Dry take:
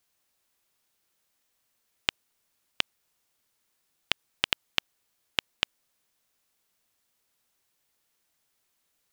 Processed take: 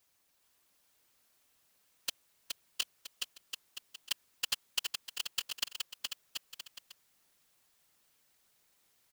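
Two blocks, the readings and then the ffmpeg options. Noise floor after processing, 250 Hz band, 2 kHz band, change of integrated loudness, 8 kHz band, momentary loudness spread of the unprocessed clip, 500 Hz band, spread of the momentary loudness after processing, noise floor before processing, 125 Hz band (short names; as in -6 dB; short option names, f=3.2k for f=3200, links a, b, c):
-73 dBFS, under -15 dB, -10.0 dB, -8.0 dB, +5.0 dB, 3 LU, -14.0 dB, 13 LU, -76 dBFS, under -15 dB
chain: -filter_complex "[0:a]acrossover=split=4200[a][b];[a]aeval=exprs='0.112*(abs(mod(val(0)/0.112+3,4)-2)-1)':c=same[c];[c][b]amix=inputs=2:normalize=0,afftfilt=real='hypot(re,im)*cos(2*PI*random(0))':imag='hypot(re,im)*sin(2*PI*random(1))':win_size=512:overlap=0.75,aecho=1:1:420|735|971.2|1148|1281:0.631|0.398|0.251|0.158|0.1,volume=7.5dB"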